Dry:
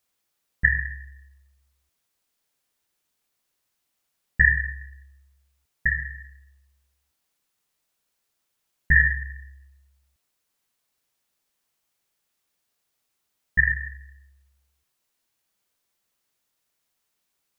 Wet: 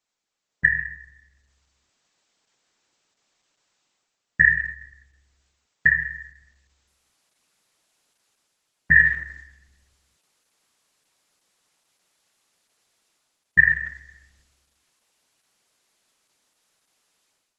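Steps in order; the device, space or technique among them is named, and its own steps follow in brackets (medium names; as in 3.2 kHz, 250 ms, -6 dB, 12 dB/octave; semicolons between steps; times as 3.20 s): video call (high-pass 140 Hz 12 dB/octave; level rider gain up to 12 dB; trim -1.5 dB; Opus 12 kbps 48 kHz)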